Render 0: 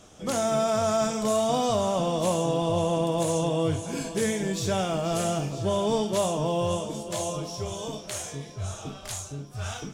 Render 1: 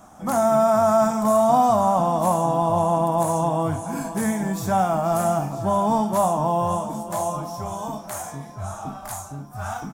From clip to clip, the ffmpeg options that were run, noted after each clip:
-af "firequalizer=gain_entry='entry(120,0);entry(220,7);entry(440,-7);entry(760,13);entry(2900,-10);entry(14000,12)':delay=0.05:min_phase=1"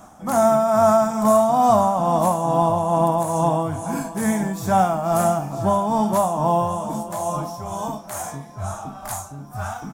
-af "tremolo=f=2.3:d=0.47,volume=1.5"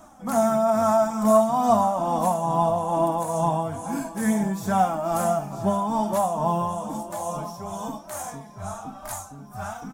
-af "flanger=delay=3.1:depth=2.1:regen=31:speed=0.99:shape=triangular"

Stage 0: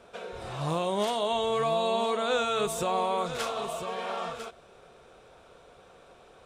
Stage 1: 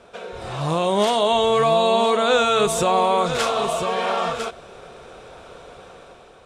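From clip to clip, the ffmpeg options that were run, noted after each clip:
-filter_complex "[0:a]asplit=2[s0][s1];[s1]alimiter=level_in=1.5:limit=0.0631:level=0:latency=1:release=156,volume=0.668,volume=0.794[s2];[s0][s2]amix=inputs=2:normalize=0,lowpass=11000,dynaudnorm=f=200:g=7:m=2.37"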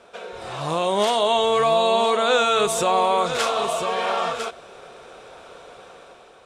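-af "lowshelf=f=200:g=-11"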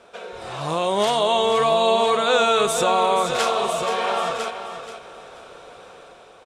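-af "aecho=1:1:480|960|1440:0.316|0.0822|0.0214"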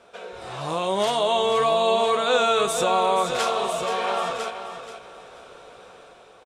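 -filter_complex "[0:a]asplit=2[s0][s1];[s1]adelay=16,volume=0.266[s2];[s0][s2]amix=inputs=2:normalize=0,volume=0.708"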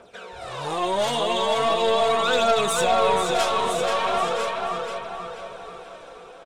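-filter_complex "[0:a]aphaser=in_gain=1:out_gain=1:delay=4.2:decay=0.6:speed=0.4:type=triangular,aeval=exprs='(tanh(5.62*val(0)+0.2)-tanh(0.2))/5.62':c=same,asplit=2[s0][s1];[s1]adelay=486,lowpass=f=3400:p=1,volume=0.631,asplit=2[s2][s3];[s3]adelay=486,lowpass=f=3400:p=1,volume=0.46,asplit=2[s4][s5];[s5]adelay=486,lowpass=f=3400:p=1,volume=0.46,asplit=2[s6][s7];[s7]adelay=486,lowpass=f=3400:p=1,volume=0.46,asplit=2[s8][s9];[s9]adelay=486,lowpass=f=3400:p=1,volume=0.46,asplit=2[s10][s11];[s11]adelay=486,lowpass=f=3400:p=1,volume=0.46[s12];[s0][s2][s4][s6][s8][s10][s12]amix=inputs=7:normalize=0"

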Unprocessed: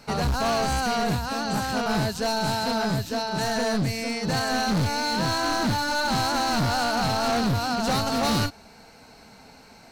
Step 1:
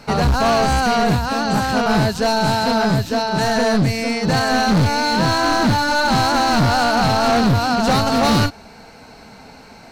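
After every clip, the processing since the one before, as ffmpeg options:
-af "highshelf=f=4800:g=-6.5,volume=2.66"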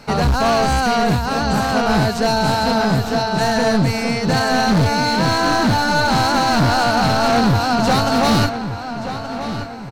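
-filter_complex "[0:a]asplit=2[s0][s1];[s1]adelay=1176,lowpass=f=3900:p=1,volume=0.316,asplit=2[s2][s3];[s3]adelay=1176,lowpass=f=3900:p=1,volume=0.43,asplit=2[s4][s5];[s5]adelay=1176,lowpass=f=3900:p=1,volume=0.43,asplit=2[s6][s7];[s7]adelay=1176,lowpass=f=3900:p=1,volume=0.43,asplit=2[s8][s9];[s9]adelay=1176,lowpass=f=3900:p=1,volume=0.43[s10];[s0][s2][s4][s6][s8][s10]amix=inputs=6:normalize=0"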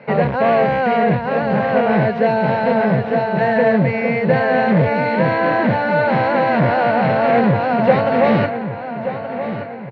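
-af "highpass=f=130:w=0.5412,highpass=f=130:w=1.3066,equalizer=f=280:t=q:w=4:g=-8,equalizer=f=530:t=q:w=4:g=9,equalizer=f=840:t=q:w=4:g=-4,equalizer=f=1300:t=q:w=4:g=-10,equalizer=f=2000:t=q:w=4:g=5,lowpass=f=2400:w=0.5412,lowpass=f=2400:w=1.3066,volume=1.26"

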